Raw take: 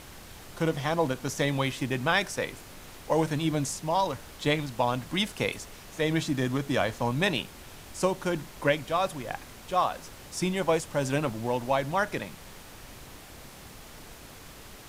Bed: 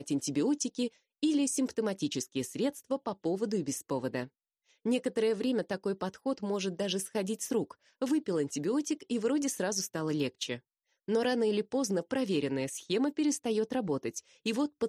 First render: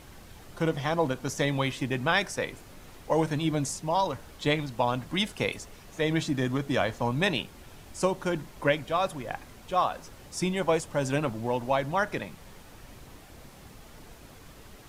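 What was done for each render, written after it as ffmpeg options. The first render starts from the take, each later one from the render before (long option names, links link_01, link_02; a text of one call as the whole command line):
ffmpeg -i in.wav -af "afftdn=noise_reduction=6:noise_floor=-47" out.wav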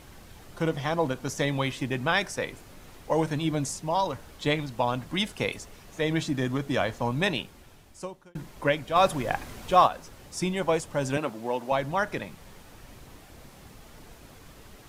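ffmpeg -i in.wav -filter_complex "[0:a]asplit=3[link_01][link_02][link_03];[link_01]afade=type=out:start_time=8.95:duration=0.02[link_04];[link_02]acontrast=81,afade=type=in:start_time=8.95:duration=0.02,afade=type=out:start_time=9.86:duration=0.02[link_05];[link_03]afade=type=in:start_time=9.86:duration=0.02[link_06];[link_04][link_05][link_06]amix=inputs=3:normalize=0,asettb=1/sr,asplit=3[link_07][link_08][link_09];[link_07]atrim=end=11.174[link_10];[link_08]atrim=start=11.17:end=11.72,asetpts=PTS-STARTPTS,afade=type=in:duration=0.004:curve=qsin,afade=type=out:start_time=0.546:duration=0.004:curve=qsin,highpass=240[link_11];[link_09]atrim=start=11.716[link_12];[link_10][link_11]acrossfade=duration=0.004:curve1=hsin:curve2=qsin[link_13];[link_13][link_12]acrossfade=duration=0.004:curve1=qsin:curve2=hsin,asplit=2[link_14][link_15];[link_14]atrim=end=8.35,asetpts=PTS-STARTPTS,afade=type=out:start_time=7.27:duration=1.08[link_16];[link_15]atrim=start=8.35,asetpts=PTS-STARTPTS,afade=type=in:duration=0.004:curve=hsin[link_17];[link_16][link_17]concat=n=2:v=0:a=1" out.wav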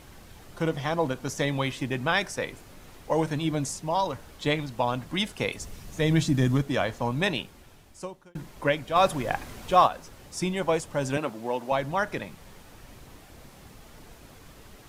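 ffmpeg -i in.wav -filter_complex "[0:a]asettb=1/sr,asplit=3[link_01][link_02][link_03];[link_01]atrim=end=5.604[link_04];[link_02]atrim=start=5.6:end=6.62,asetpts=PTS-STARTPTS,afade=type=in:duration=0.004:curve=qsin,afade=type=out:start_time=1.016:duration=0.004:curve=qsin,bass=frequency=250:gain=9,treble=frequency=4000:gain=5[link_05];[link_03]atrim=start=6.616[link_06];[link_04][link_05]acrossfade=duration=0.004:curve1=hsin:curve2=qsin[link_07];[link_07][link_06]acrossfade=duration=0.004:curve1=qsin:curve2=hsin" out.wav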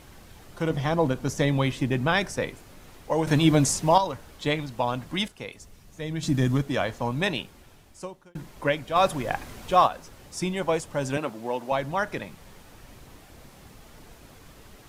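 ffmpeg -i in.wav -filter_complex "[0:a]asettb=1/sr,asplit=3[link_01][link_02][link_03];[link_01]atrim=end=0.704[link_04];[link_02]atrim=start=0.7:end=2.5,asetpts=PTS-STARTPTS,afade=type=in:duration=0.004:curve=qsin,afade=type=out:start_time=1.796:duration=0.004:curve=qsin,lowshelf=frequency=450:gain=6.5[link_05];[link_03]atrim=start=2.496[link_06];[link_04][link_05]acrossfade=duration=0.004:curve1=hsin:curve2=qsin[link_07];[link_07][link_06]acrossfade=duration=0.004:curve1=qsin:curve2=hsin,asplit=5[link_08][link_09][link_10][link_11][link_12];[link_08]atrim=end=3.272[link_13];[link_09]atrim=start=3.268:end=3.982,asetpts=PTS-STARTPTS,volume=8.5dB[link_14];[link_10]atrim=start=3.978:end=5.282[link_15];[link_11]atrim=start=5.278:end=6.232,asetpts=PTS-STARTPTS,volume=-9dB[link_16];[link_12]atrim=start=6.228[link_17];[link_13][link_14]acrossfade=duration=0.004:curve1=hsin:curve2=hsin[link_18];[link_18][link_15]acrossfade=duration=0.004:curve1=hsin:curve2=hsin[link_19];[link_19][link_16]acrossfade=duration=0.004:curve1=hsin:curve2=hsin[link_20];[link_20][link_17]acrossfade=duration=0.004:curve1=hsin:curve2=hsin" out.wav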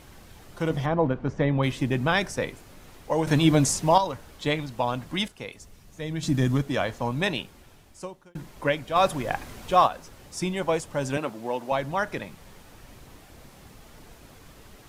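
ffmpeg -i in.wav -filter_complex "[0:a]asplit=3[link_01][link_02][link_03];[link_01]afade=type=out:start_time=0.85:duration=0.02[link_04];[link_02]lowpass=2000,afade=type=in:start_time=0.85:duration=0.02,afade=type=out:start_time=1.62:duration=0.02[link_05];[link_03]afade=type=in:start_time=1.62:duration=0.02[link_06];[link_04][link_05][link_06]amix=inputs=3:normalize=0" out.wav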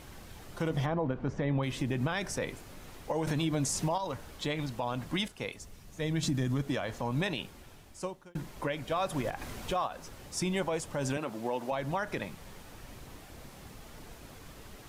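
ffmpeg -i in.wav -af "acompressor=threshold=-24dB:ratio=6,alimiter=limit=-22dB:level=0:latency=1:release=82" out.wav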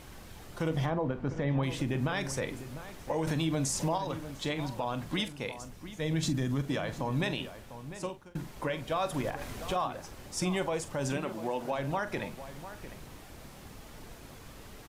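ffmpeg -i in.wav -filter_complex "[0:a]asplit=2[link_01][link_02];[link_02]adelay=44,volume=-13dB[link_03];[link_01][link_03]amix=inputs=2:normalize=0,asplit=2[link_04][link_05];[link_05]adelay=699.7,volume=-12dB,highshelf=frequency=4000:gain=-15.7[link_06];[link_04][link_06]amix=inputs=2:normalize=0" out.wav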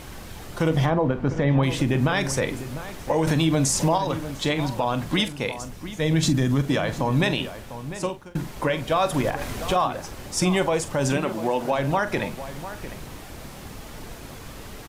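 ffmpeg -i in.wav -af "volume=9.5dB" out.wav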